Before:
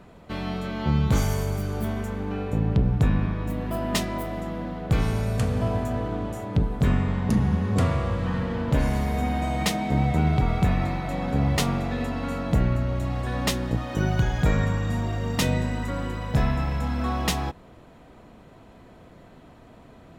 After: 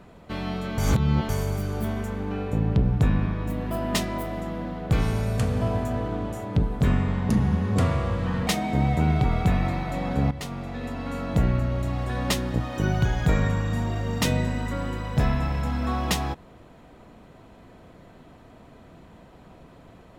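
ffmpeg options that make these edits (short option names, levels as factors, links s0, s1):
-filter_complex "[0:a]asplit=5[s0][s1][s2][s3][s4];[s0]atrim=end=0.782[s5];[s1]atrim=start=0.778:end=1.292,asetpts=PTS-STARTPTS,areverse[s6];[s2]atrim=start=1.288:end=8.472[s7];[s3]atrim=start=9.638:end=11.48,asetpts=PTS-STARTPTS,afade=t=out:st=1.838:d=0.004:c=hsin:silence=0.199526[s8];[s4]atrim=start=11.48,asetpts=PTS-STARTPTS,afade=t=in:d=1.1:silence=0.199526[s9];[s5][s6]acrossfade=d=0.004:c1=hsin:c2=hsin[s10];[s10][s7]acrossfade=d=0.004:c1=hsin:c2=hsin[s11];[s8][s9]concat=n=2:v=0:a=1[s12];[s11][s12]acrossfade=d=0.004:c1=hsin:c2=hsin"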